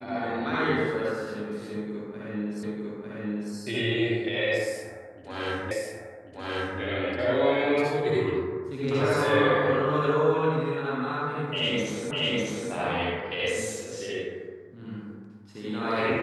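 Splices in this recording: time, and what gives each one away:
0:02.63: the same again, the last 0.9 s
0:05.71: the same again, the last 1.09 s
0:12.11: the same again, the last 0.6 s

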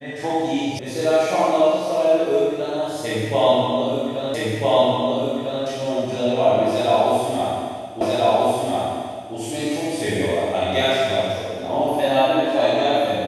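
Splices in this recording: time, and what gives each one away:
0:00.79: cut off before it has died away
0:04.34: the same again, the last 1.3 s
0:08.01: the same again, the last 1.34 s

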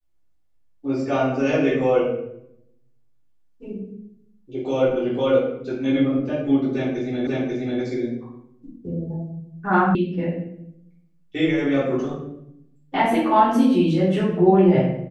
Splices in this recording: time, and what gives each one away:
0:07.27: the same again, the last 0.54 s
0:09.95: cut off before it has died away

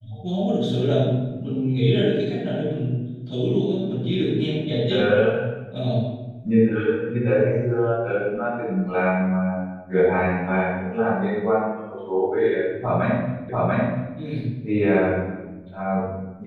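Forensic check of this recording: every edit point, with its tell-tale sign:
0:13.49: the same again, the last 0.69 s

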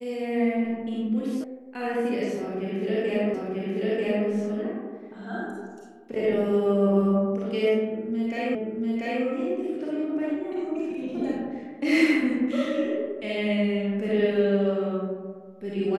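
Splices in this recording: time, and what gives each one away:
0:01.44: cut off before it has died away
0:03.34: the same again, the last 0.94 s
0:08.55: the same again, the last 0.69 s

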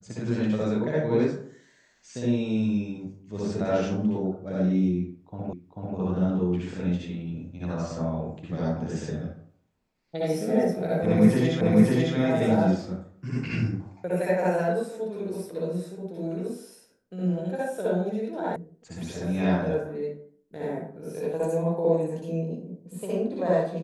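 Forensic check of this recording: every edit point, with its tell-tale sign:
0:05.53: the same again, the last 0.44 s
0:11.61: the same again, the last 0.55 s
0:18.56: cut off before it has died away

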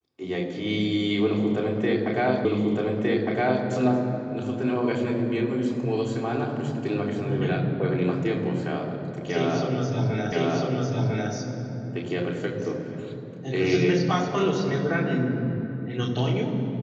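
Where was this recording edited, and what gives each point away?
0:02.45: the same again, the last 1.21 s
0:10.32: the same again, the last 1 s

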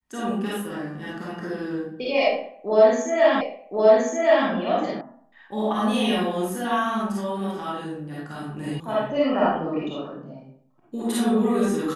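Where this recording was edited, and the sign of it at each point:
0:03.41: the same again, the last 1.07 s
0:05.01: cut off before it has died away
0:08.80: cut off before it has died away

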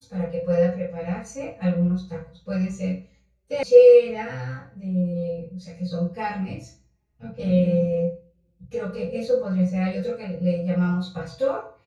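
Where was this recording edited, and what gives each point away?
0:03.63: cut off before it has died away

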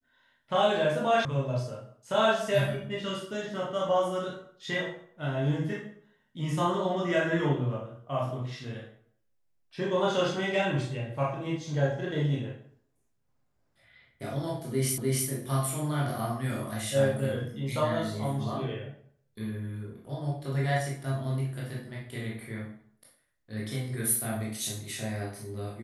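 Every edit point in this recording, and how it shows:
0:01.25: cut off before it has died away
0:14.98: the same again, the last 0.3 s

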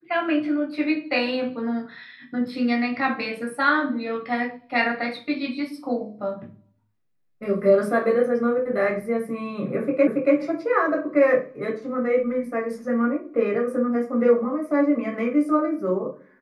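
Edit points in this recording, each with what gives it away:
0:10.07: the same again, the last 0.28 s

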